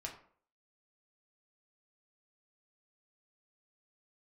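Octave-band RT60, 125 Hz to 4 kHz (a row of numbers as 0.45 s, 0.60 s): 0.45 s, 0.50 s, 0.55 s, 0.50 s, 0.40 s, 0.30 s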